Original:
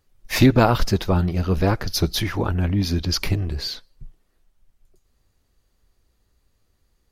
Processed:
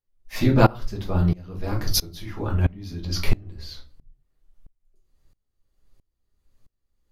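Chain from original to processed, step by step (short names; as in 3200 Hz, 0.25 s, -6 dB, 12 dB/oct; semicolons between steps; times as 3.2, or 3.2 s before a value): 1.63–2.14 high shelf 5700 Hz +8.5 dB; shoebox room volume 130 m³, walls furnished, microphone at 1.3 m; dB-ramp tremolo swelling 1.5 Hz, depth 24 dB; gain -2 dB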